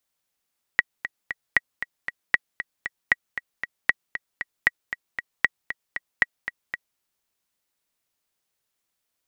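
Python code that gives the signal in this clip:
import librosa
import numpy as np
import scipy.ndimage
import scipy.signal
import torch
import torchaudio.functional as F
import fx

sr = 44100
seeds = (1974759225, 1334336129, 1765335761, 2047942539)

y = fx.click_track(sr, bpm=232, beats=3, bars=8, hz=1920.0, accent_db=11.5, level_db=-3.5)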